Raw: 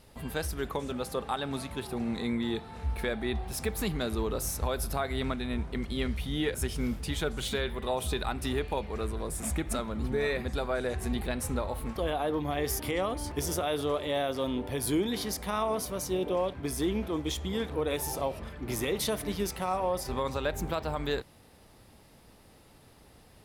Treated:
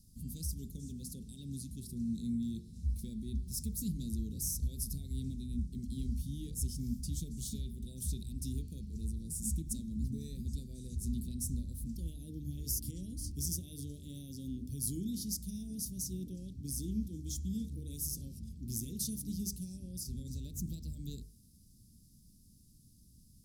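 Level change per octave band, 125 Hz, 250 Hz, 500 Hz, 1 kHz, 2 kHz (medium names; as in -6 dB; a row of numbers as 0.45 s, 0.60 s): -2.5 dB, -6.0 dB, -27.0 dB, under -40 dB, under -35 dB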